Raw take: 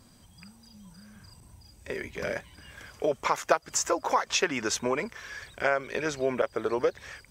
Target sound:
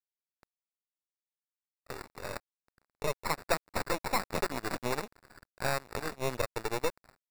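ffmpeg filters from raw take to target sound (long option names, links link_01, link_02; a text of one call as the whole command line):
ffmpeg -i in.wav -af "equalizer=frequency=150:width_type=o:width=0.46:gain=-12.5,acrusher=samples=14:mix=1:aa=0.000001,aeval=exprs='0.335*(cos(1*acos(clip(val(0)/0.335,-1,1)))-cos(1*PI/2))+0.0531*(cos(8*acos(clip(val(0)/0.335,-1,1)))-cos(8*PI/2))':channel_layout=same,aeval=exprs='sgn(val(0))*max(abs(val(0))-0.0106,0)':channel_layout=same,volume=-6dB" out.wav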